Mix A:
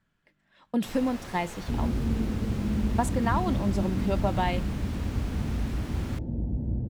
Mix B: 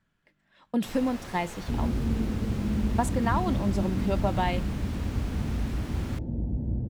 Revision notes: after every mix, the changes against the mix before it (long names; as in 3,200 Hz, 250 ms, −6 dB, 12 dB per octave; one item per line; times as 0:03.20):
nothing changed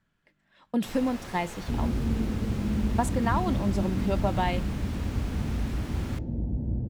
first sound: send +7.5 dB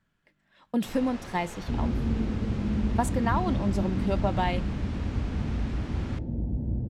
first sound: add high-frequency loss of the air 88 metres